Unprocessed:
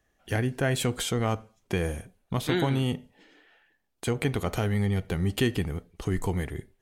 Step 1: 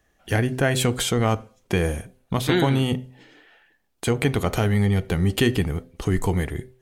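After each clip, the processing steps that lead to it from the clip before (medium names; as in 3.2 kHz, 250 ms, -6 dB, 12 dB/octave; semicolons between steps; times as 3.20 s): de-hum 128.1 Hz, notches 5; trim +6 dB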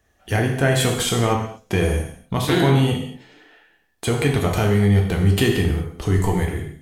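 gated-style reverb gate 260 ms falling, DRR 0.5 dB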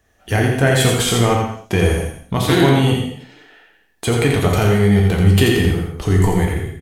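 delay 85 ms -5 dB; trim +3 dB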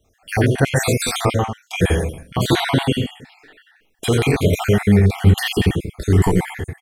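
random holes in the spectrogram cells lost 47%; trim +1 dB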